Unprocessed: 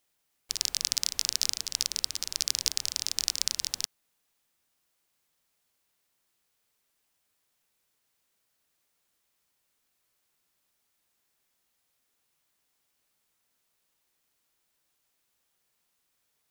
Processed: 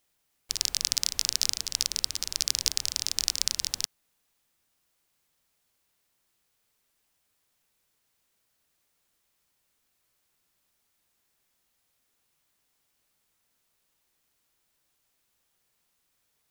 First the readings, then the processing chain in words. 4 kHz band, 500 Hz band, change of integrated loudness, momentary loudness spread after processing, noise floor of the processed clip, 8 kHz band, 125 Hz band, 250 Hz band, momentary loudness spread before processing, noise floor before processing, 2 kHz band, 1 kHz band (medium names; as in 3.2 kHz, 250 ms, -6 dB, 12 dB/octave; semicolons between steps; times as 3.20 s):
+1.5 dB, +2.0 dB, +1.5 dB, 4 LU, -75 dBFS, +1.5 dB, +4.5 dB, +3.0 dB, 4 LU, -77 dBFS, +1.5 dB, +1.5 dB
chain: bass shelf 140 Hz +5 dB; trim +1.5 dB